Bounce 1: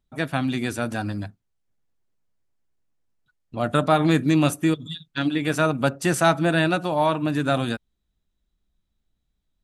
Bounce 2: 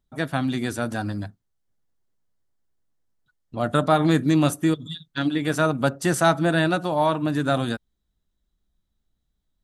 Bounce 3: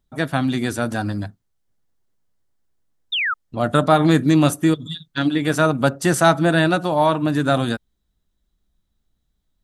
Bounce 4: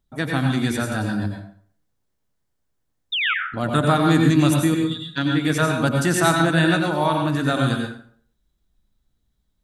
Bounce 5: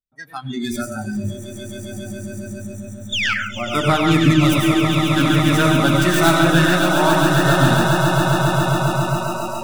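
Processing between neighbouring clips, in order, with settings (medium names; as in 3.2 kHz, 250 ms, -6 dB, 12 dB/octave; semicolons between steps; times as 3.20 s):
peaking EQ 2.5 kHz -6.5 dB 0.34 oct
painted sound fall, 3.12–3.34 s, 1.2–3.8 kHz -25 dBFS; trim +4 dB
dynamic bell 600 Hz, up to -6 dB, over -29 dBFS, Q 1.1; plate-style reverb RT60 0.54 s, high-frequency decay 0.75×, pre-delay 80 ms, DRR 1.5 dB; trim -1.5 dB
tracing distortion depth 0.074 ms; echo with a slow build-up 136 ms, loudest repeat 8, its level -9 dB; spectral noise reduction 26 dB; trim +1.5 dB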